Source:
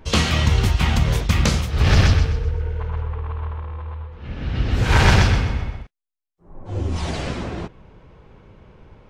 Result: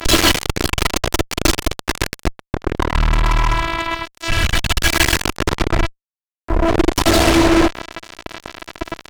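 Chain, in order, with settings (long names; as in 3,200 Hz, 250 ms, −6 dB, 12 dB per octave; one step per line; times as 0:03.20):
0:02.94–0:05.16: guitar amp tone stack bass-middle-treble 10-0-10
brickwall limiter −13 dBFS, peak gain reduction 8.5 dB
phases set to zero 331 Hz
fuzz pedal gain 42 dB, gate −41 dBFS
level +6 dB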